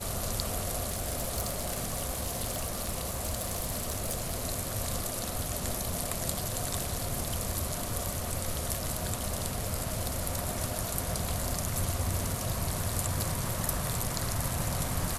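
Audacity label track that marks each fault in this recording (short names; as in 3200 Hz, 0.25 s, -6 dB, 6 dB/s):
0.860000	4.360000	clipped -26 dBFS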